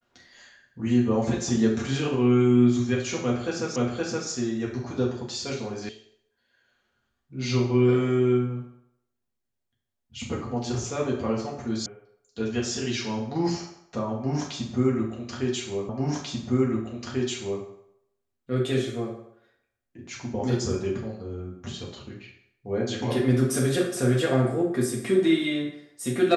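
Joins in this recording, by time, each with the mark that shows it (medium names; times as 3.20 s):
3.76 s: repeat of the last 0.52 s
5.89 s: sound stops dead
11.86 s: sound stops dead
15.89 s: repeat of the last 1.74 s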